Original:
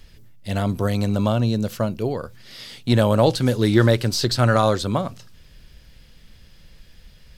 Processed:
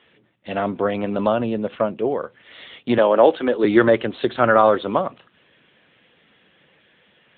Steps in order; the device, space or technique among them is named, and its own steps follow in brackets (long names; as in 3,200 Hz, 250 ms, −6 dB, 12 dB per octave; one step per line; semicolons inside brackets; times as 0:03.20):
0:02.98–0:03.65: high-pass filter 240 Hz 24 dB per octave
telephone (band-pass filter 320–3,200 Hz; level +5.5 dB; AMR narrowband 10.2 kbit/s 8,000 Hz)